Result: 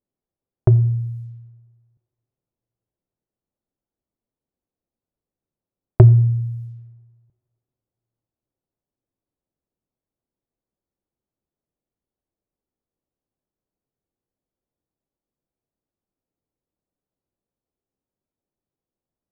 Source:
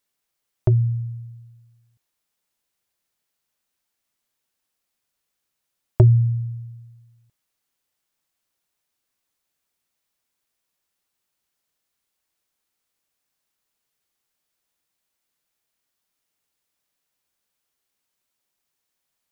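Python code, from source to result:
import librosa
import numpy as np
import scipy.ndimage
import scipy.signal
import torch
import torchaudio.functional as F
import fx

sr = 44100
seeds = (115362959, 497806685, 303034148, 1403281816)

y = fx.env_lowpass(x, sr, base_hz=450.0, full_db=-27.0)
y = fx.rev_double_slope(y, sr, seeds[0], early_s=0.71, late_s=2.6, knee_db=-26, drr_db=16.0)
y = y * 10.0 ** (4.0 / 20.0)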